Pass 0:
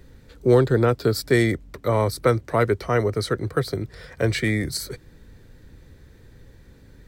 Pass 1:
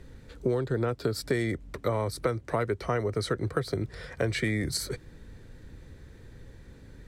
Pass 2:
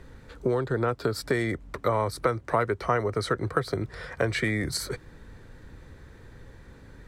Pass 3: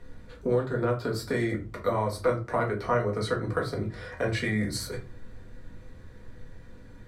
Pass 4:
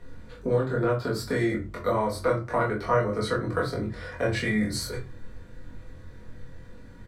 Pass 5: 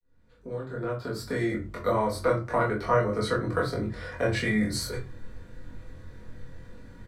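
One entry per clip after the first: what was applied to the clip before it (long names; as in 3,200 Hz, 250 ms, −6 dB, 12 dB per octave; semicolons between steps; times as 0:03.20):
low-pass filter 11,000 Hz 12 dB per octave; parametric band 4,800 Hz −2 dB; downward compressor 8 to 1, threshold −24 dBFS, peak gain reduction 13.5 dB
parametric band 1,100 Hz +7.5 dB 1.6 octaves
rectangular room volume 140 cubic metres, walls furnished, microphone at 1.8 metres; level −6 dB
double-tracking delay 23 ms −3 dB
fade in at the beginning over 1.93 s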